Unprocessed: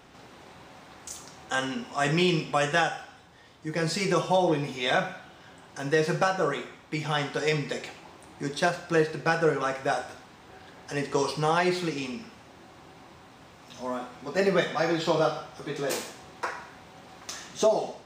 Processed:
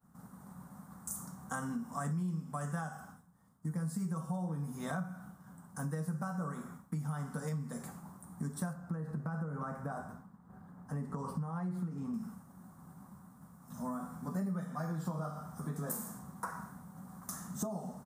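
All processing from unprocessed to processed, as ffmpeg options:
ffmpeg -i in.wav -filter_complex "[0:a]asettb=1/sr,asplit=3[link_01][link_02][link_03];[link_01]atrim=end=8.734[link_04];[link_02]atrim=start=8.73:end=12.14,asetpts=PTS-STARTPTS,afade=type=in:duration=0.004:curve=qsin,afade=type=out:start_time=3.406:duration=0.004:curve=qsin,equalizer=frequency=11000:width_type=o:width=2.6:gain=-15,acompressor=threshold=-27dB:ratio=3:attack=3.2:release=140:knee=1:detection=peak[link_05];[link_03]atrim=start=12.136[link_06];[link_04][link_05]acrossfade=duration=0.004:curve1=hsin:curve2=qsin[link_07];[link_07][link_06]acrossfade=duration=0.004:curve1=qsin:curve2=hsin,agate=range=-33dB:threshold=-45dB:ratio=3:detection=peak,firequalizer=gain_entry='entry(110,0);entry(190,13);entry(330,-13);entry(1200,-1);entry(2500,-28);entry(10000,11)':delay=0.05:min_phase=1,acompressor=threshold=-35dB:ratio=6" out.wav

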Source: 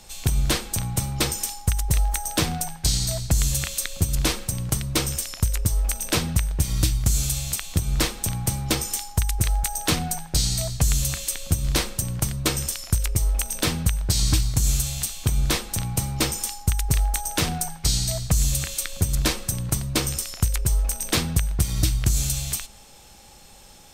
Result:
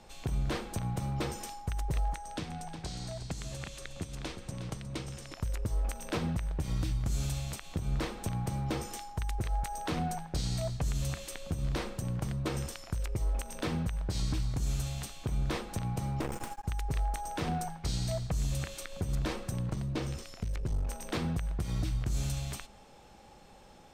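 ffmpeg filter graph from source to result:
ffmpeg -i in.wav -filter_complex "[0:a]asettb=1/sr,asplit=3[link_01][link_02][link_03];[link_01]atrim=end=2.134[link_04];[link_02]atrim=start=2.13:end=5.33,asetpts=PTS-STARTPTS,afade=type=in:duration=0.004:curve=qsin,afade=type=out:start_time=3.196:duration=0.004:curve=qsin,lowpass=9800,acrossover=split=210|2100[link_05][link_06][link_07];[link_05]acompressor=threshold=-35dB:ratio=4[link_08];[link_06]acompressor=threshold=-41dB:ratio=4[link_09];[link_07]acompressor=threshold=-31dB:ratio=4[link_10];[link_08][link_09][link_10]amix=inputs=3:normalize=0,aecho=1:1:361:0.316,atrim=end_sample=141120[link_11];[link_03]atrim=start=5.326[link_12];[link_04][link_11]acrossfade=duration=0.004:curve1=hsin:curve2=qsin[link_13];[link_13][link_12]acrossfade=duration=0.004:curve1=qsin:curve2=hsin,asettb=1/sr,asplit=3[link_14][link_15][link_16];[link_14]atrim=end=16.214[link_17];[link_15]atrim=start=16.21:end=16.65,asetpts=PTS-STARTPTS,afade=type=in:duration=0.004:curve=qsin,afade=type=out:start_time=0.436:duration=0.004:curve=qsin,equalizer=frequency=4400:width=1.1:gain=-13,aeval=exprs='max(val(0),0)':channel_layout=same,acontrast=68[link_18];[link_16]atrim=start=16.646[link_19];[link_17][link_18]acrossfade=duration=0.004:curve1=hsin:curve2=qsin[link_20];[link_20][link_19]acrossfade=duration=0.004:curve1=qsin:curve2=hsin,asettb=1/sr,asplit=3[link_21][link_22][link_23];[link_21]atrim=end=19.714[link_24];[link_22]atrim=start=19.71:end=20.9,asetpts=PTS-STARTPTS,afade=type=in:duration=0.004:curve=qsin,afade=type=out:start_time=1.186:duration=0.004:curve=qsin,acrossover=split=6600[link_25][link_26];[link_26]acompressor=threshold=-38dB:ratio=4:attack=1:release=60[link_27];[link_25][link_27]amix=inputs=2:normalize=0,equalizer=frequency=1000:width=0.52:gain=-3.5,aeval=exprs='clip(val(0),-1,0.0596)':channel_layout=same[link_28];[link_23]atrim=start=20.896[link_29];[link_24][link_28]acrossfade=duration=0.004:curve1=hsin:curve2=qsin[link_30];[link_30][link_29]acrossfade=duration=0.004:curve1=qsin:curve2=hsin,lowpass=frequency=1000:poles=1,lowshelf=frequency=130:gain=-9,alimiter=limit=-23.5dB:level=0:latency=1:release=77" out.wav

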